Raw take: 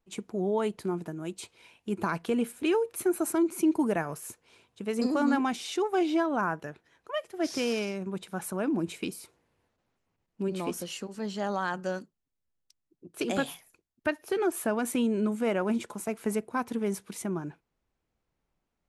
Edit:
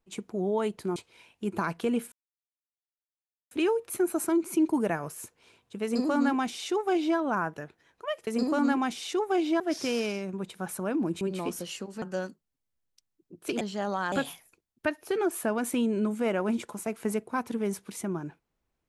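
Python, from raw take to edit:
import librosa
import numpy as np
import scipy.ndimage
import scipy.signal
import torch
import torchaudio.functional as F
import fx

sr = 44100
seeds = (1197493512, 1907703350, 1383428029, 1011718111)

y = fx.edit(x, sr, fx.cut(start_s=0.96, length_s=0.45),
    fx.insert_silence(at_s=2.57, length_s=1.39),
    fx.duplicate(start_s=4.9, length_s=1.33, to_s=7.33),
    fx.cut(start_s=8.94, length_s=1.48),
    fx.move(start_s=11.23, length_s=0.51, to_s=13.33), tone=tone)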